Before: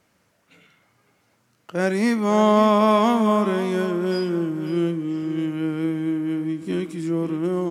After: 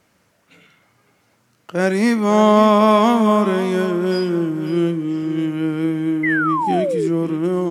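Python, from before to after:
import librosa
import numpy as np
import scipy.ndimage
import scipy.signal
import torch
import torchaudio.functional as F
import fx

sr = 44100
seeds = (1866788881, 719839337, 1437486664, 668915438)

y = fx.spec_paint(x, sr, seeds[0], shape='fall', start_s=6.23, length_s=0.85, low_hz=370.0, high_hz=2100.0, level_db=-24.0)
y = y * 10.0 ** (4.0 / 20.0)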